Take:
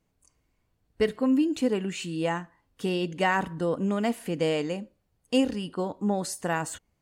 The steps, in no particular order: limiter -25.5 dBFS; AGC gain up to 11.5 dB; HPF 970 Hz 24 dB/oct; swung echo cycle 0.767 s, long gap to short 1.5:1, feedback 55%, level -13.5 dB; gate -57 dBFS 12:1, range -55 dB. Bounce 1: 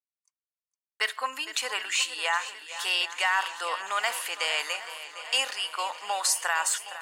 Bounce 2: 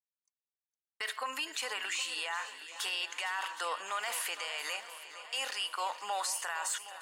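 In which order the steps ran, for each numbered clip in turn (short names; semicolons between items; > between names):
HPF > limiter > AGC > gate > swung echo; HPF > gate > AGC > limiter > swung echo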